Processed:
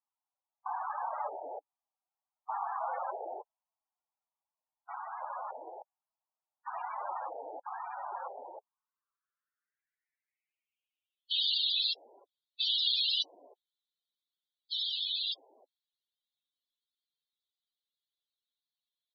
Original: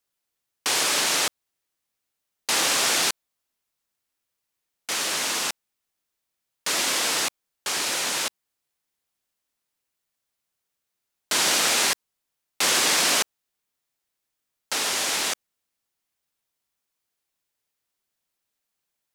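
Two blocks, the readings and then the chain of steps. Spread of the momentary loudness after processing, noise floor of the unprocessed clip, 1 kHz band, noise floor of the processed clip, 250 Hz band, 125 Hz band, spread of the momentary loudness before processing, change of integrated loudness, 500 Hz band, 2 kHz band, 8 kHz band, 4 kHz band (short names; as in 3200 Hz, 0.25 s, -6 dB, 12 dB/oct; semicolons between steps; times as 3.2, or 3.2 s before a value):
19 LU, -82 dBFS, -6.0 dB, under -85 dBFS, under -25 dB, under -40 dB, 11 LU, -11.5 dB, -11.0 dB, -23.5 dB, under -40 dB, -7.5 dB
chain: bands offset in time highs, lows 0.31 s, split 690 Hz; band-pass sweep 810 Hz -> 3700 Hz, 8.33–11.47; loudest bins only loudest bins 16; gain +3 dB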